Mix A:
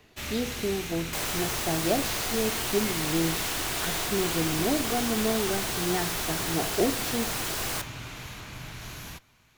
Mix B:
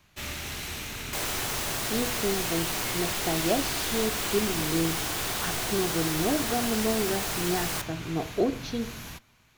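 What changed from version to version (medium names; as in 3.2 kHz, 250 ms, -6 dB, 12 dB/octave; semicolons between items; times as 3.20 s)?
speech: entry +1.60 s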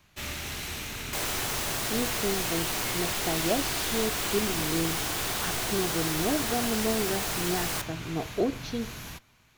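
speech: send -6.5 dB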